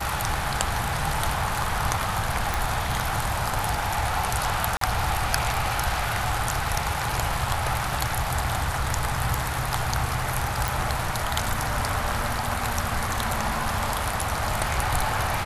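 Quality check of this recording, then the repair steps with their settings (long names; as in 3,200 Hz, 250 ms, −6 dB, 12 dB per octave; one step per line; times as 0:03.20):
0:02.54: click
0:04.77–0:04.81: drop-out 43 ms
0:10.68: click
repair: click removal
repair the gap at 0:04.77, 43 ms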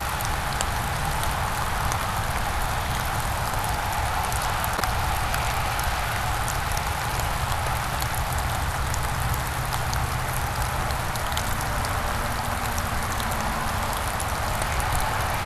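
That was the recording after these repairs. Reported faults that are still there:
none of them is left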